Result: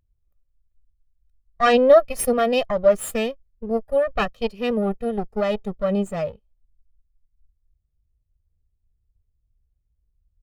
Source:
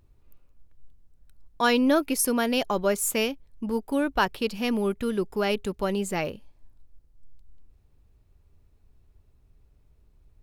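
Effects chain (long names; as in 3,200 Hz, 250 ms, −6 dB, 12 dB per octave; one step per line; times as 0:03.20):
lower of the sound and its delayed copy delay 1.6 ms
every bin expanded away from the loudest bin 1.5 to 1
level +8 dB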